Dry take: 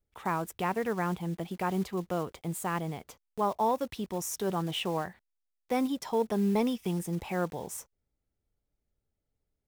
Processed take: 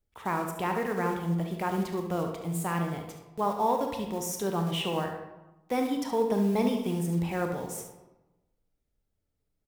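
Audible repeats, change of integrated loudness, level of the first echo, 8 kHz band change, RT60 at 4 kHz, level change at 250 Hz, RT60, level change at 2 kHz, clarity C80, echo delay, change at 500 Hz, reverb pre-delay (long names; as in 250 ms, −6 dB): 1, +2.0 dB, −10.0 dB, +1.0 dB, 0.60 s, +2.0 dB, 1.0 s, +2.0 dB, 8.0 dB, 71 ms, +2.0 dB, 24 ms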